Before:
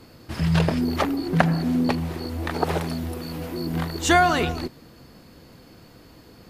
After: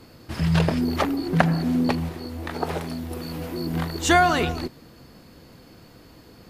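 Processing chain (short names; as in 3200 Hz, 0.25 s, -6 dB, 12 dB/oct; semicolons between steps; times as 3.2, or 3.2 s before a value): 2.09–3.11 resonator 50 Hz, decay 0.25 s, harmonics all, mix 60%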